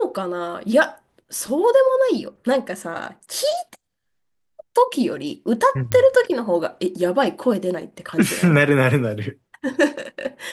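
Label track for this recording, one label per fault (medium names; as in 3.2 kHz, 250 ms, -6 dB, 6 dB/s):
5.920000	5.920000	pop -6 dBFS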